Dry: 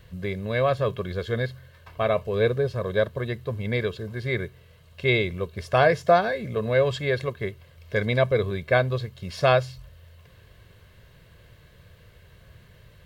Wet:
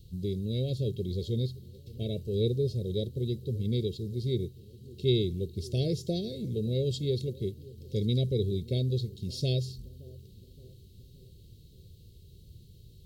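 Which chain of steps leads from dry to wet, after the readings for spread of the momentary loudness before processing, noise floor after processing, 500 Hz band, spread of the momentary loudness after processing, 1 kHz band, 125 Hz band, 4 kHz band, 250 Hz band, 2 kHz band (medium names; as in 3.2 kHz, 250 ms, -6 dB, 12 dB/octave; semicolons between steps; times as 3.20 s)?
11 LU, -54 dBFS, -9.5 dB, 12 LU, under -30 dB, -0.5 dB, -3.0 dB, -1.0 dB, -29.0 dB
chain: elliptic band-stop 370–3900 Hz, stop band 70 dB; bucket-brigade echo 571 ms, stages 2048, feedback 58%, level -20.5 dB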